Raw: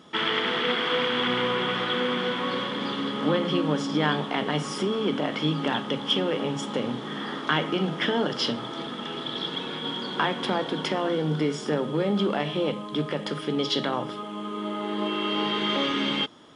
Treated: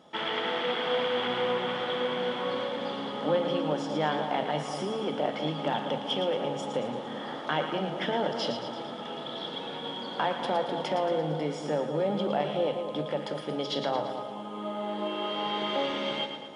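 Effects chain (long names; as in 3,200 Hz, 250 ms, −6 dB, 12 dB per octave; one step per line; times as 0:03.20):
reversed playback
upward compression, threshold −42 dBFS
reversed playback
flat-topped bell 670 Hz +9 dB 1 octave
echo with a time of its own for lows and highs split 1,000 Hz, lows 196 ms, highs 113 ms, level −7.5 dB
level −7.5 dB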